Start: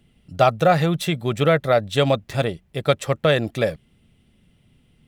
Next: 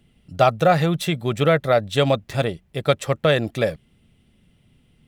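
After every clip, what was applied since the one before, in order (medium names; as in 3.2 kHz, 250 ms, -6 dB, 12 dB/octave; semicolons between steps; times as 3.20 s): no audible change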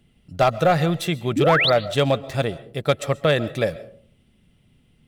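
painted sound rise, 1.36–1.70 s, 240–4800 Hz -18 dBFS; hard clipper -8.5 dBFS, distortion -21 dB; algorithmic reverb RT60 0.51 s, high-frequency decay 0.35×, pre-delay 95 ms, DRR 17 dB; trim -1 dB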